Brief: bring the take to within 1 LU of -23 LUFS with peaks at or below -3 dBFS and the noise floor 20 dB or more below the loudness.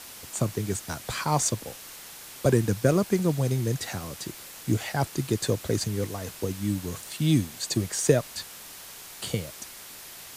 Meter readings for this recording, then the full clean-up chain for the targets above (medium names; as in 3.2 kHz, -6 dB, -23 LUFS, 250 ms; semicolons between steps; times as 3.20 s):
noise floor -44 dBFS; noise floor target -48 dBFS; loudness -27.5 LUFS; peak level -6.0 dBFS; loudness target -23.0 LUFS
-> noise print and reduce 6 dB; trim +4.5 dB; peak limiter -3 dBFS